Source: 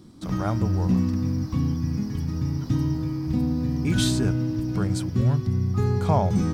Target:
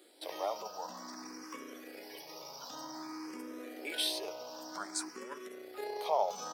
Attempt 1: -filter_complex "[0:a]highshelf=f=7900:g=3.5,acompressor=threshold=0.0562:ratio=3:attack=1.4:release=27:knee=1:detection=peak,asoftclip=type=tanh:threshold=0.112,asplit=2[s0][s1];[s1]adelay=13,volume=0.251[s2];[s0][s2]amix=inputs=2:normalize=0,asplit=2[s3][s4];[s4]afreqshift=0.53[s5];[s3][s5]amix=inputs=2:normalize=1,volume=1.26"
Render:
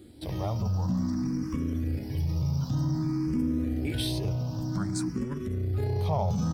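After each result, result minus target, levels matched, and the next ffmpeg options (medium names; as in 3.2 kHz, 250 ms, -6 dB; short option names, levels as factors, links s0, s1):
saturation: distortion +22 dB; 500 Hz band -7.5 dB
-filter_complex "[0:a]highshelf=f=7900:g=3.5,acompressor=threshold=0.0562:ratio=3:attack=1.4:release=27:knee=1:detection=peak,asoftclip=type=tanh:threshold=0.422,asplit=2[s0][s1];[s1]adelay=13,volume=0.251[s2];[s0][s2]amix=inputs=2:normalize=0,asplit=2[s3][s4];[s4]afreqshift=0.53[s5];[s3][s5]amix=inputs=2:normalize=1,volume=1.26"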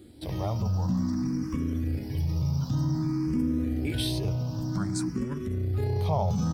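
500 Hz band -7.5 dB
-filter_complex "[0:a]highshelf=f=7900:g=3.5,acompressor=threshold=0.0562:ratio=3:attack=1.4:release=27:knee=1:detection=peak,highpass=f=480:w=0.5412,highpass=f=480:w=1.3066,asoftclip=type=tanh:threshold=0.422,asplit=2[s0][s1];[s1]adelay=13,volume=0.251[s2];[s0][s2]amix=inputs=2:normalize=0,asplit=2[s3][s4];[s4]afreqshift=0.53[s5];[s3][s5]amix=inputs=2:normalize=1,volume=1.26"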